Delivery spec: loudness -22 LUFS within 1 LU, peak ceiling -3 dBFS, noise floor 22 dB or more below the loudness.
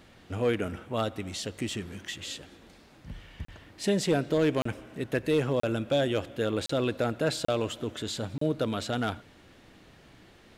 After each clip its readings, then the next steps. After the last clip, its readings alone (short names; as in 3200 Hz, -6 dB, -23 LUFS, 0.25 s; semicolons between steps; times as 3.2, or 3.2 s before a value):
clipped 0.2%; flat tops at -17.5 dBFS; dropouts 6; longest dropout 34 ms; loudness -30.0 LUFS; peak -17.5 dBFS; loudness target -22.0 LUFS
-> clip repair -17.5 dBFS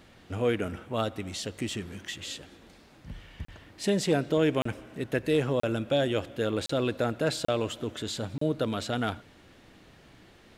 clipped 0.0%; dropouts 6; longest dropout 34 ms
-> interpolate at 3.45/4.62/5.6/6.66/7.45/8.38, 34 ms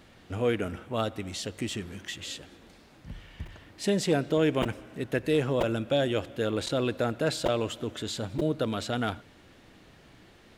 dropouts 0; loudness -30.0 LUFS; peak -12.5 dBFS; loudness target -22.0 LUFS
-> gain +8 dB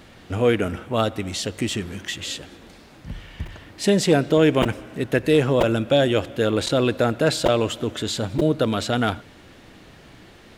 loudness -22.0 LUFS; peak -4.5 dBFS; noise floor -48 dBFS